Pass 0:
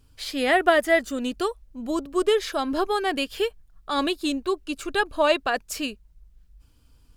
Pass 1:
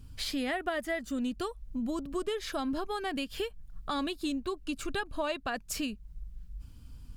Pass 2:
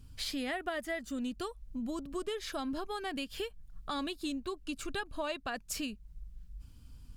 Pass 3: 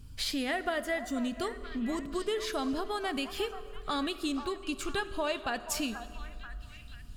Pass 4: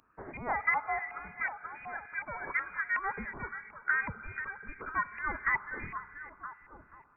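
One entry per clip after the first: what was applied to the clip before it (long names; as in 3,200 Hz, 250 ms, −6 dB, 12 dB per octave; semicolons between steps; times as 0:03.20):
low shelf with overshoot 280 Hz +7.5 dB, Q 1.5; downward compressor 4 to 1, threshold −34 dBFS, peak gain reduction 17 dB; level +1.5 dB
parametric band 7,000 Hz +2.5 dB 2.9 octaves; level −4 dB
echo through a band-pass that steps 484 ms, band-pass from 940 Hz, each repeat 0.7 octaves, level −8.5 dB; on a send at −12 dB: convolution reverb RT60 2.5 s, pre-delay 4 ms; on the sum: level +4 dB
auto-filter high-pass saw down 2.7 Hz 710–1,700 Hz; voice inversion scrambler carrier 2,700 Hz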